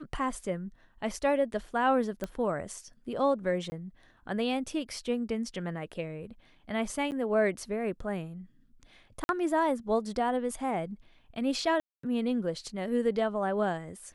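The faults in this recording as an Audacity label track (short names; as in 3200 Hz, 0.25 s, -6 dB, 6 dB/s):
2.240000	2.240000	pop -20 dBFS
3.700000	3.720000	gap 20 ms
7.110000	7.120000	gap 9.2 ms
9.240000	9.290000	gap 51 ms
11.800000	12.030000	gap 0.234 s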